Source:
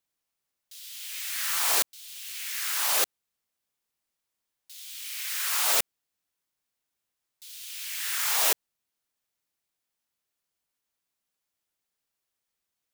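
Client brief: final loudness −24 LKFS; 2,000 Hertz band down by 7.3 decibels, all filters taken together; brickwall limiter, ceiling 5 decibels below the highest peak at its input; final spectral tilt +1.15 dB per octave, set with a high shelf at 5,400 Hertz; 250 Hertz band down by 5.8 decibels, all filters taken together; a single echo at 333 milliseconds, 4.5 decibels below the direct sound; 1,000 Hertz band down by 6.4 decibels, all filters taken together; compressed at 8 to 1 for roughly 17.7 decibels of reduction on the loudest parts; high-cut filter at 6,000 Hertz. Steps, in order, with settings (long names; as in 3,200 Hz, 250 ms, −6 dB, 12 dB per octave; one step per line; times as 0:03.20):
low-pass filter 6,000 Hz
parametric band 250 Hz −8.5 dB
parametric band 1,000 Hz −5.5 dB
parametric band 2,000 Hz −7 dB
high-shelf EQ 5,400 Hz −4.5 dB
downward compressor 8 to 1, threshold −48 dBFS
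brickwall limiter −41.5 dBFS
single-tap delay 333 ms −4.5 dB
level +25.5 dB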